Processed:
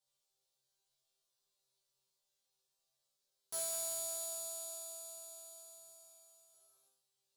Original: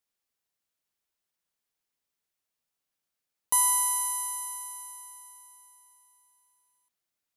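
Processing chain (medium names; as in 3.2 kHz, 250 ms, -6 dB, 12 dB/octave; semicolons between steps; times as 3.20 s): cycle switcher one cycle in 3, inverted; graphic EQ 125/250/500/2000/4000/8000 Hz +8/-11/+11/-8/+10/+6 dB; compression 1.5:1, threshold -50 dBFS, peak gain reduction 12 dB; saturation -31 dBFS, distortion -12 dB; chord resonator C3 fifth, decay 0.63 s; trim +13.5 dB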